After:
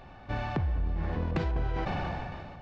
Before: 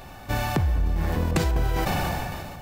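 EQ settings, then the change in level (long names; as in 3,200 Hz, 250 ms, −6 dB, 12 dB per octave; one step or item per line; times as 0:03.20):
Gaussian smoothing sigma 2.2 samples
−6.5 dB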